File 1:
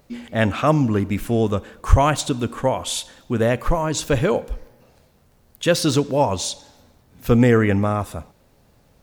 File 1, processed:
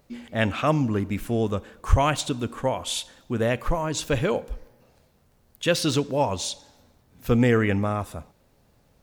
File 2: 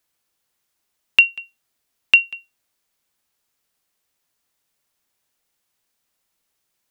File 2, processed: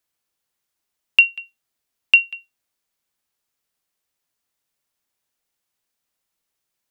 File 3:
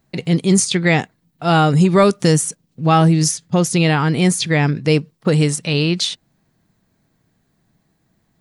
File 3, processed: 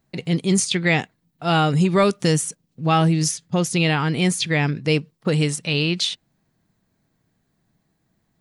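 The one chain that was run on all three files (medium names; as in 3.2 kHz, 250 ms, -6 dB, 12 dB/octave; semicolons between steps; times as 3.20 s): dynamic bell 2.8 kHz, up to +5 dB, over -33 dBFS, Q 1.3; trim -5 dB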